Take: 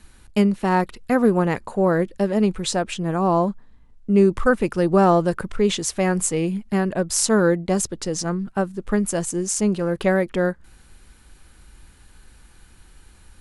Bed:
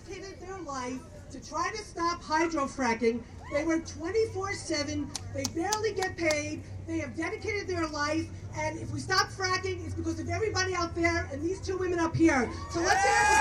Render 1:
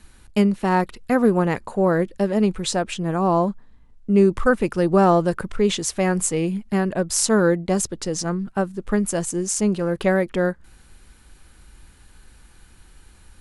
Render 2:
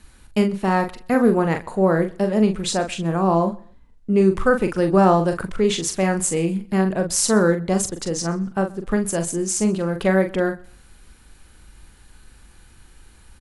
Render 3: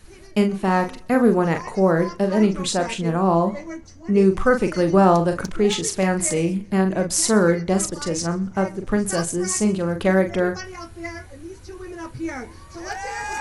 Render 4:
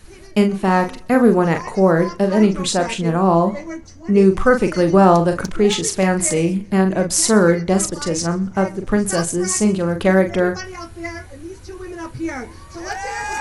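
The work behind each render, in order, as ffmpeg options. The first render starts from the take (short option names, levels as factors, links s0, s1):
-af anull
-filter_complex "[0:a]asplit=2[s0][s1];[s1]adelay=42,volume=0.447[s2];[s0][s2]amix=inputs=2:normalize=0,aecho=1:1:127|254:0.0631|0.0158"
-filter_complex "[1:a]volume=0.501[s0];[0:a][s0]amix=inputs=2:normalize=0"
-af "volume=1.5,alimiter=limit=0.891:level=0:latency=1"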